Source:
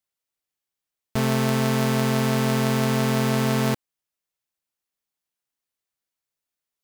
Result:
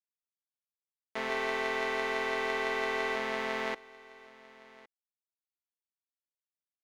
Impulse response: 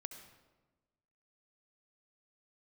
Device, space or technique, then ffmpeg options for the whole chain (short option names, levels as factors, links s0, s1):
pocket radio on a weak battery: -filter_complex "[0:a]highpass=170,highpass=390,lowpass=3400,aeval=exprs='sgn(val(0))*max(abs(val(0))-0.00891,0)':c=same,equalizer=f=2000:t=o:w=0.24:g=9.5,asettb=1/sr,asplit=3[s0][s1][s2];[s0]atrim=end=1.294[s3];[s1]atrim=start=1.29:end=3.16,asetpts=PTS-STARTPTS,afade=t=in:d=0.004:c=qsin,afade=t=out:st=1.866:d=0.004:c=qsin,aecho=1:1:2.6:0.66,atrim=end_sample=82467[s4];[s2]atrim=start=3.156[s5];[s3][s4]acrossfade=d=0.004:c1=hsin:c2=qsin[s6];[s6][s5]acrossfade=d=0.004:c1=qsin:c2=hsin,aecho=1:1:1111:0.0891,volume=0.473"